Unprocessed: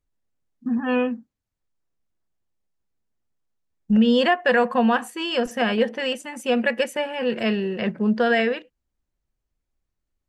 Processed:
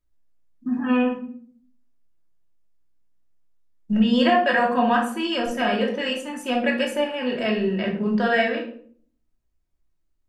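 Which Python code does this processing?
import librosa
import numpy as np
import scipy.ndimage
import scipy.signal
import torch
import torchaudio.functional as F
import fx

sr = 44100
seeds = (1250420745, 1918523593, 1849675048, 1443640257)

y = fx.room_shoebox(x, sr, seeds[0], volume_m3=600.0, walls='furnished', distance_m=2.8)
y = y * librosa.db_to_amplitude(-3.5)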